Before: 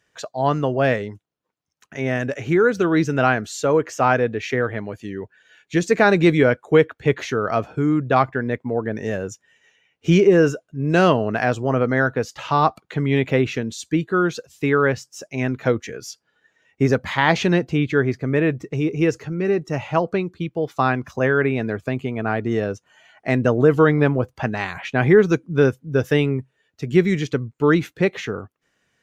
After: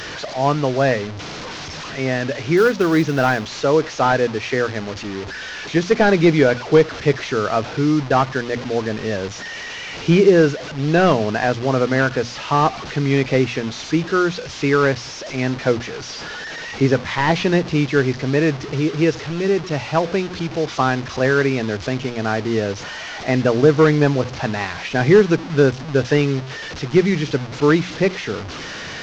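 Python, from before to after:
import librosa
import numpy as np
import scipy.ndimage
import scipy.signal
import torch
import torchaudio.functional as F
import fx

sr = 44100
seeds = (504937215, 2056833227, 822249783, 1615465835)

y = fx.delta_mod(x, sr, bps=32000, step_db=-26.5)
y = fx.quant_float(y, sr, bits=4, at=(2.57, 3.48))
y = fx.hum_notches(y, sr, base_hz=60, count=4)
y = y * 10.0 ** (2.0 / 20.0)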